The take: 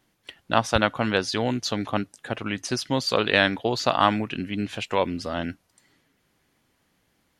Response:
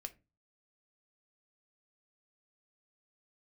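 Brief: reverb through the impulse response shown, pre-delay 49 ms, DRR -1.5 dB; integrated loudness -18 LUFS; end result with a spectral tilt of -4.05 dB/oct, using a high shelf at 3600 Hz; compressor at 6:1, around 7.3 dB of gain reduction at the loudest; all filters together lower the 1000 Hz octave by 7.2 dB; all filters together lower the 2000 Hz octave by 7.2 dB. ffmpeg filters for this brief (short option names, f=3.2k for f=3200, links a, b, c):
-filter_complex "[0:a]equalizer=f=1k:t=o:g=-8,equalizer=f=2k:t=o:g=-8.5,highshelf=f=3.6k:g=5,acompressor=threshold=-26dB:ratio=6,asplit=2[a][b];[1:a]atrim=start_sample=2205,adelay=49[c];[b][c]afir=irnorm=-1:irlink=0,volume=5.5dB[d];[a][d]amix=inputs=2:normalize=0,volume=10dB"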